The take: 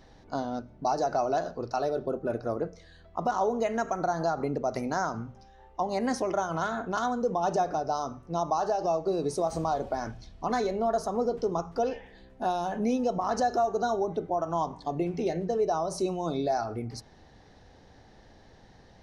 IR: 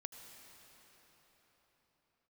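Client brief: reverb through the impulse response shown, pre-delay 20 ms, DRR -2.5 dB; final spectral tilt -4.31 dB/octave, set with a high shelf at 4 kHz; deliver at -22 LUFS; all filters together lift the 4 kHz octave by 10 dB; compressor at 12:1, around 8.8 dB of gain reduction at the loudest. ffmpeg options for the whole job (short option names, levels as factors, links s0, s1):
-filter_complex "[0:a]highshelf=f=4000:g=5.5,equalizer=f=4000:t=o:g=8.5,acompressor=threshold=0.0282:ratio=12,asplit=2[s0][s1];[1:a]atrim=start_sample=2205,adelay=20[s2];[s1][s2]afir=irnorm=-1:irlink=0,volume=2.11[s3];[s0][s3]amix=inputs=2:normalize=0,volume=3.16"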